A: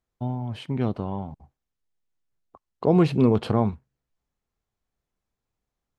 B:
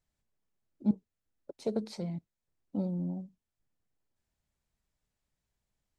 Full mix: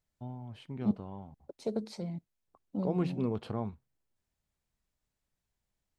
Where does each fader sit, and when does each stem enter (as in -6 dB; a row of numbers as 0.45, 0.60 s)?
-13.5, -1.5 dB; 0.00, 0.00 s